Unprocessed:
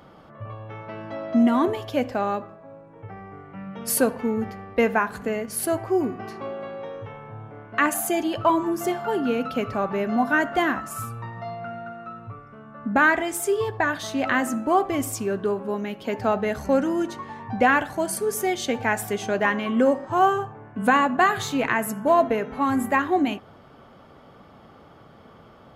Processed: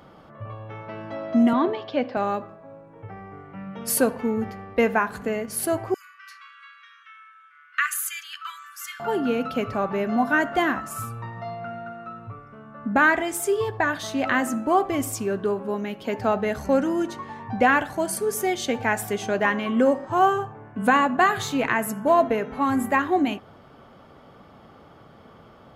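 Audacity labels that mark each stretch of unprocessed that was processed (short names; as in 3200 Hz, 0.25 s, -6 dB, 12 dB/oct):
1.530000	2.170000	elliptic band-pass 150–4400 Hz, stop band 50 dB
5.940000	9.000000	steep high-pass 1200 Hz 96 dB/oct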